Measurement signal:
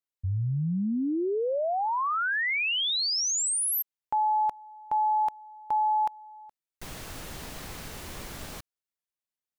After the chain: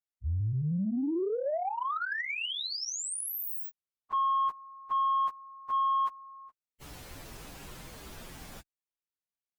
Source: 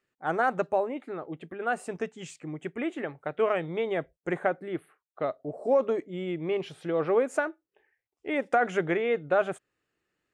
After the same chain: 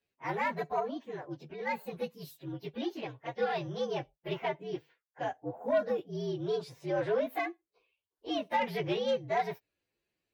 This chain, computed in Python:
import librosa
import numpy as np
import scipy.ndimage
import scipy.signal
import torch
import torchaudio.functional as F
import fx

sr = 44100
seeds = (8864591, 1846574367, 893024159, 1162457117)

y = fx.partial_stretch(x, sr, pct=119)
y = fx.cheby_harmonics(y, sr, harmonics=(5,), levels_db=(-22,), full_scale_db=-14.0)
y = y * librosa.db_to_amplitude(-4.0)